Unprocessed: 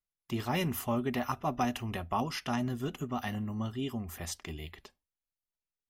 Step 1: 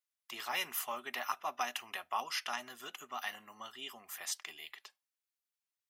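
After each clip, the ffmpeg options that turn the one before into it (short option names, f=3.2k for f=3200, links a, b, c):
-af "highpass=1.1k,volume=1.5dB"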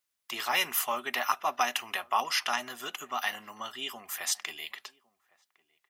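-filter_complex "[0:a]asplit=2[a][b];[b]adelay=1108,volume=-25dB,highshelf=f=4k:g=-24.9[c];[a][c]amix=inputs=2:normalize=0,volume=8.5dB"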